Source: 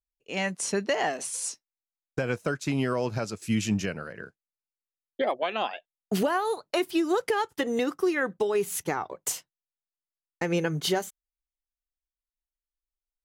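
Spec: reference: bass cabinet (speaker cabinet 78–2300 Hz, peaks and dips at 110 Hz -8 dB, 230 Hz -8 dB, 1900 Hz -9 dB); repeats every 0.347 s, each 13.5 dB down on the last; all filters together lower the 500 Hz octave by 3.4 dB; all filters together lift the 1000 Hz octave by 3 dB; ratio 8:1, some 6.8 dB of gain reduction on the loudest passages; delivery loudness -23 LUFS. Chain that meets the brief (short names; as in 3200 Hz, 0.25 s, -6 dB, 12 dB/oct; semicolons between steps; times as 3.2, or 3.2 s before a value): bell 500 Hz -5.5 dB; bell 1000 Hz +6.5 dB; compressor 8:1, threshold -28 dBFS; speaker cabinet 78–2300 Hz, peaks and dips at 110 Hz -8 dB, 230 Hz -8 dB, 1900 Hz -9 dB; feedback echo 0.347 s, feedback 21%, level -13.5 dB; gain +13 dB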